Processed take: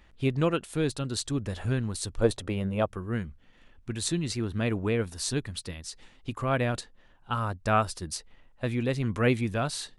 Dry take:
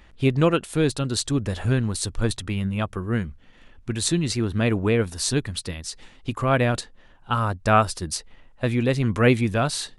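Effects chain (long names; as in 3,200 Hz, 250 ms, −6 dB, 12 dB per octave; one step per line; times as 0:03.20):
0:02.20–0:02.86: parametric band 530 Hz +13.5 dB 1.3 octaves
level −6.5 dB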